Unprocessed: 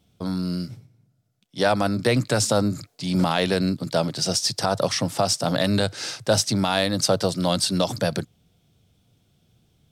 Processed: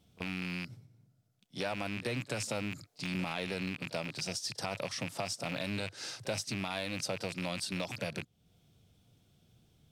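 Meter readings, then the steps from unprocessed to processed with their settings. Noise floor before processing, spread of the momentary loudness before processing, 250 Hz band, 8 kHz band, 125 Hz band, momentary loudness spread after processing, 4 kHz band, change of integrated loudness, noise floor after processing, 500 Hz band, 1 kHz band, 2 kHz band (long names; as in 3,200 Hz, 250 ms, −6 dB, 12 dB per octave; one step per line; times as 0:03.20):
−66 dBFS, 8 LU, −15.0 dB, −14.5 dB, −15.0 dB, 5 LU, −14.0 dB, −14.0 dB, −71 dBFS, −16.0 dB, −15.5 dB, −8.0 dB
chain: loose part that buzzes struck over −29 dBFS, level −13 dBFS
downward compressor 2 to 1, threshold −40 dBFS, peak gain reduction 14 dB
on a send: backwards echo 33 ms −20 dB
on the sum: level −3.5 dB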